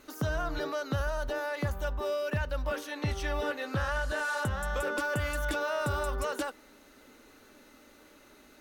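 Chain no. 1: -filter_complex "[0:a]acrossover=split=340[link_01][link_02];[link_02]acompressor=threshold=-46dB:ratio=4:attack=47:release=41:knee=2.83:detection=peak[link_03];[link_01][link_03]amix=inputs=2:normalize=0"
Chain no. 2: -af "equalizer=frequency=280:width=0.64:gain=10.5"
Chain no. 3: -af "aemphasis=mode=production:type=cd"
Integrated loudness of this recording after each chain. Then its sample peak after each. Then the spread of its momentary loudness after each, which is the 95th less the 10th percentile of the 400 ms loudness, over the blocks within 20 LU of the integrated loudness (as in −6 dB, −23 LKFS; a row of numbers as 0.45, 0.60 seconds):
−36.5, −28.5, −32.0 LKFS; −20.5, −13.0, −19.5 dBFS; 21, 3, 4 LU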